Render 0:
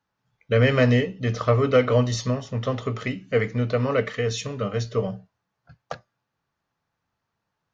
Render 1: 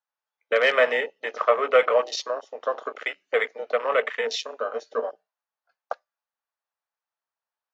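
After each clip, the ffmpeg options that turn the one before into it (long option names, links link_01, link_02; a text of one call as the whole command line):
ffmpeg -i in.wav -af "highpass=frequency=540:width=0.5412,highpass=frequency=540:width=1.3066,afwtdn=0.02,volume=4.5dB" out.wav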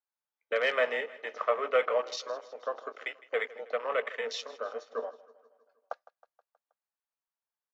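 ffmpeg -i in.wav -af "aecho=1:1:159|318|477|636|795:0.106|0.0614|0.0356|0.0207|0.012,volume=-8dB" out.wav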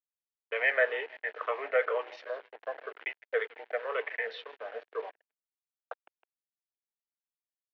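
ffmpeg -i in.wav -af "afftfilt=real='re*pow(10,9/40*sin(2*PI*(0.66*log(max(b,1)*sr/1024/100)/log(2)-(-2)*(pts-256)/sr)))':imag='im*pow(10,9/40*sin(2*PI*(0.66*log(max(b,1)*sr/1024/100)/log(2)-(-2)*(pts-256)/sr)))':win_size=1024:overlap=0.75,acrusher=bits=6:mix=0:aa=0.5,highpass=frequency=370:width=0.5412,highpass=frequency=370:width=1.3066,equalizer=frequency=550:width_type=q:width=4:gain=-5,equalizer=frequency=1200:width_type=q:width=4:gain=-9,equalizer=frequency=1700:width_type=q:width=4:gain=4,lowpass=frequency=2800:width=0.5412,lowpass=frequency=2800:width=1.3066" out.wav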